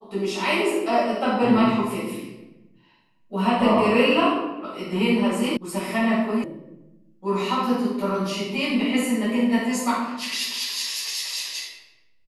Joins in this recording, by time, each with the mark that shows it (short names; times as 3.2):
5.57 sound cut off
6.44 sound cut off